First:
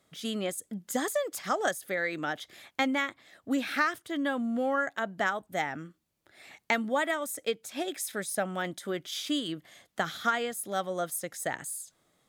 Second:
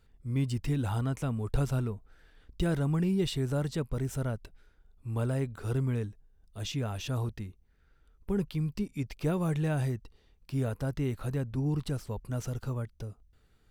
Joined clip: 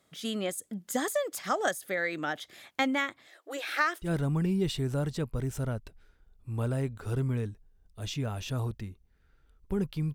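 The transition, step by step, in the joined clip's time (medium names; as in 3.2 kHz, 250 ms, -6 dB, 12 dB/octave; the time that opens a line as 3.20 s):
first
3.27–4.11 s: brick-wall FIR high-pass 300 Hz
4.06 s: go over to second from 2.64 s, crossfade 0.10 s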